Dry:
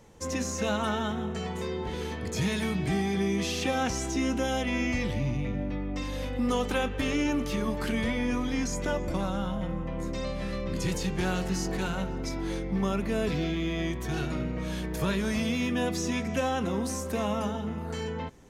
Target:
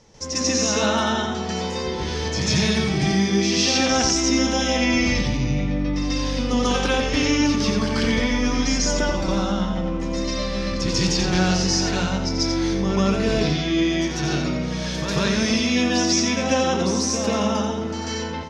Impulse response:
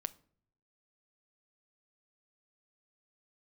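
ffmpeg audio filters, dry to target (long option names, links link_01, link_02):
-filter_complex "[0:a]lowpass=frequency=5400:width_type=q:width=4.2,aecho=1:1:88:0.473,asplit=2[link_01][link_02];[1:a]atrim=start_sample=2205,adelay=142[link_03];[link_02][link_03]afir=irnorm=-1:irlink=0,volume=7dB[link_04];[link_01][link_04]amix=inputs=2:normalize=0"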